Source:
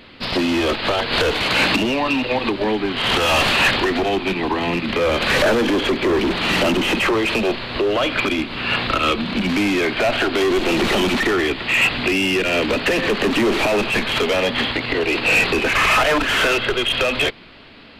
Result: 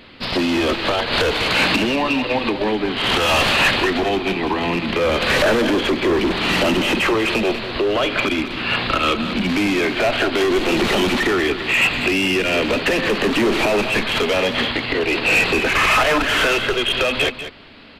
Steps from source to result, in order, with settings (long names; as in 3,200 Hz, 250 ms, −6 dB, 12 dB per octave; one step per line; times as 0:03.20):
on a send: single-tap delay 194 ms −11.5 dB